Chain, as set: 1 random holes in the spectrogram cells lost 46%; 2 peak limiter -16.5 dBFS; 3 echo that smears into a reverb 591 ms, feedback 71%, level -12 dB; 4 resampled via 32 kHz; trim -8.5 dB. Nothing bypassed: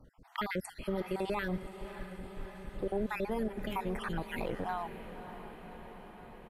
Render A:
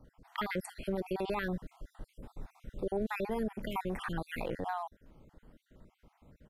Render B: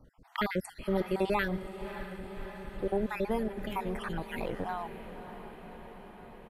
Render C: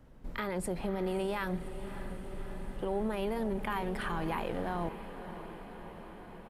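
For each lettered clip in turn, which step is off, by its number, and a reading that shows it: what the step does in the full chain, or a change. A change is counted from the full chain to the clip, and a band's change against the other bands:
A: 3, momentary loudness spread change +3 LU; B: 2, crest factor change +4.0 dB; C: 1, 8 kHz band +2.5 dB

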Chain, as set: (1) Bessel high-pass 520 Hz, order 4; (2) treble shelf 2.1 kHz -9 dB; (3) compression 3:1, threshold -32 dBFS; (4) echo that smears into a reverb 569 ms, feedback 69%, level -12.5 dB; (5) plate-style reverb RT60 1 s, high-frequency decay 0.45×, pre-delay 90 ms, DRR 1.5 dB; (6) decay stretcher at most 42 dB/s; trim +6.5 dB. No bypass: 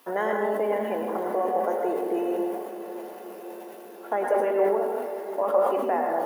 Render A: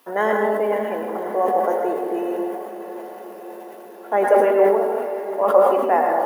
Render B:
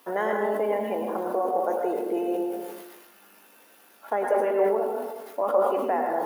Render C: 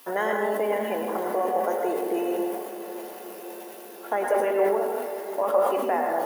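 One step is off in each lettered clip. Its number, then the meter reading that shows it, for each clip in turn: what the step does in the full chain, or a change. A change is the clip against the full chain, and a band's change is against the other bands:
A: 3, mean gain reduction 4.0 dB; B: 4, momentary loudness spread change -8 LU; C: 2, 2 kHz band +3.0 dB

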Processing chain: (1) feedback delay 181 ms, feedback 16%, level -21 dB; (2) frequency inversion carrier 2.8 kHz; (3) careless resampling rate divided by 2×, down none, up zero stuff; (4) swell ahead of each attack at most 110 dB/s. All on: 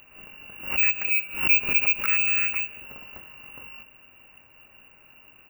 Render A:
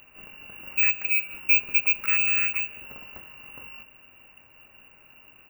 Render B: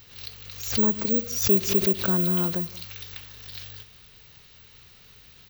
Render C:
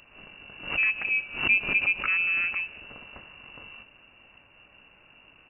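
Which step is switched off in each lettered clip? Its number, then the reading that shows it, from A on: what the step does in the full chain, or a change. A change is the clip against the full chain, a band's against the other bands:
4, 2 kHz band +5.0 dB; 2, 2 kHz band -34.5 dB; 3, crest factor change -3.0 dB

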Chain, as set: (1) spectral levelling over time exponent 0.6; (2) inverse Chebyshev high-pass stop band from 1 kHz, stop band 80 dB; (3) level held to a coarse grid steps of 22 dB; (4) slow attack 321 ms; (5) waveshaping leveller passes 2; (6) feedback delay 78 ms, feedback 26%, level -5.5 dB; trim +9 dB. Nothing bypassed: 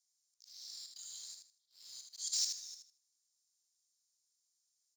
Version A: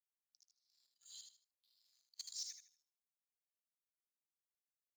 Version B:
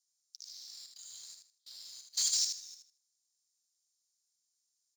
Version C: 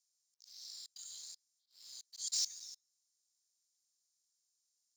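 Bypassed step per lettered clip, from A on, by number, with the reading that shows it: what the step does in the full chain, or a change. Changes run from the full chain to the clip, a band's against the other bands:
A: 1, momentary loudness spread change -5 LU; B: 4, crest factor change -1.5 dB; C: 6, momentary loudness spread change +2 LU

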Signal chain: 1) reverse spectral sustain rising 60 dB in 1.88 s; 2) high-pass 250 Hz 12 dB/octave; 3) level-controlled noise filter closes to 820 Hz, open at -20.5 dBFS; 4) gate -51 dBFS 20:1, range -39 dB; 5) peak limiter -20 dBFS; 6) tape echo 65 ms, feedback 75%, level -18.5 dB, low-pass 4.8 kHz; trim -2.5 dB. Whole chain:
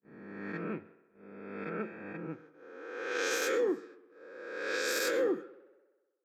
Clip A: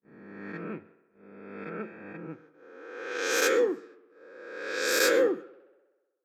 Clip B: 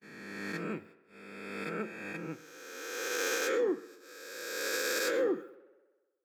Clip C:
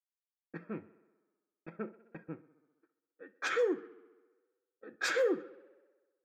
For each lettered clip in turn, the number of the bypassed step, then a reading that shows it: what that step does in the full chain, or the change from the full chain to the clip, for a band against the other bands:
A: 5, crest factor change +5.0 dB; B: 3, 8 kHz band +2.5 dB; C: 1, 8 kHz band -5.5 dB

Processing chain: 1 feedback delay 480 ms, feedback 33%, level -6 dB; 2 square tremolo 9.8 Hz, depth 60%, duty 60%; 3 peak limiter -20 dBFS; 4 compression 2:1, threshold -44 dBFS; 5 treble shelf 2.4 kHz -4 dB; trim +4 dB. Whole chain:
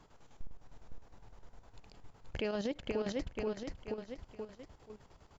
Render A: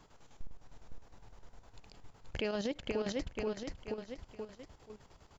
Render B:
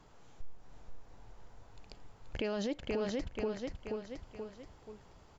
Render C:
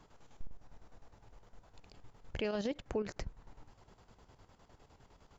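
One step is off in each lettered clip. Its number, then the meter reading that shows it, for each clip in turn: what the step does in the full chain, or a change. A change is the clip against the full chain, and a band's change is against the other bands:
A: 5, 4 kHz band +2.5 dB; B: 2, momentary loudness spread change +2 LU; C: 1, momentary loudness spread change -7 LU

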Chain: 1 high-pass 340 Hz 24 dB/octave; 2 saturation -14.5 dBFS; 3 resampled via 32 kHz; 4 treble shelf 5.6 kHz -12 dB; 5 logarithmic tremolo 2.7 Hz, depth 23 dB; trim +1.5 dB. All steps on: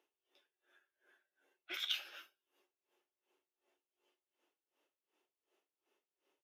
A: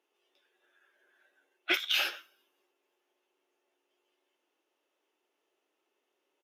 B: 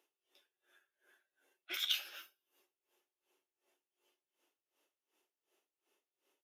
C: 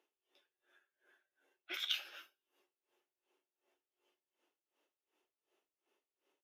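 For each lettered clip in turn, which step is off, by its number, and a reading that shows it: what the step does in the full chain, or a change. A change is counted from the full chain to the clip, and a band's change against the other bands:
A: 5, momentary loudness spread change +2 LU; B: 4, 8 kHz band +6.5 dB; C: 2, distortion -23 dB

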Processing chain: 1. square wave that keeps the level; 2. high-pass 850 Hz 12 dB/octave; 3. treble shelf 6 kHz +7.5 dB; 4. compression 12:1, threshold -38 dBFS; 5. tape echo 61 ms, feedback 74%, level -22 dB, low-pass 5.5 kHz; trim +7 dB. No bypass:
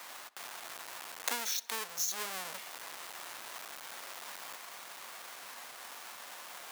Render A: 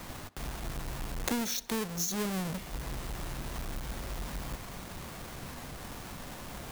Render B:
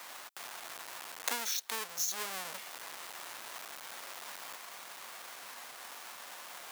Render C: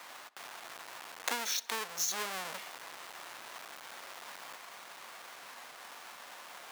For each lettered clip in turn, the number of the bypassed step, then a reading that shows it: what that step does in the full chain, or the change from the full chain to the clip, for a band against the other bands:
2, 125 Hz band +29.0 dB; 5, echo-to-direct -30.5 dB to none; 3, 8 kHz band -2.0 dB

